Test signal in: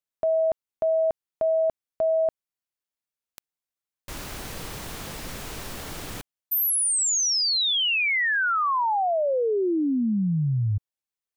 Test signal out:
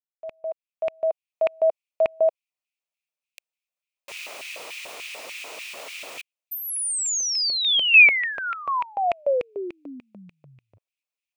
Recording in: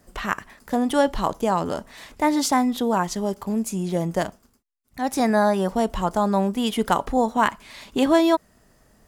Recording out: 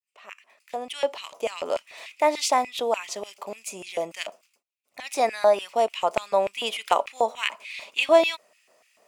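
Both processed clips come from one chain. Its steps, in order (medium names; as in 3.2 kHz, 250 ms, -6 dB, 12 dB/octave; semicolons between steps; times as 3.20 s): fade-in on the opening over 1.68 s; LFO high-pass square 3.4 Hz 600–2400 Hz; graphic EQ with 31 bands 800 Hz -4 dB, 1.6 kHz -7 dB, 2.5 kHz +9 dB, 12.5 kHz -8 dB; trim -2 dB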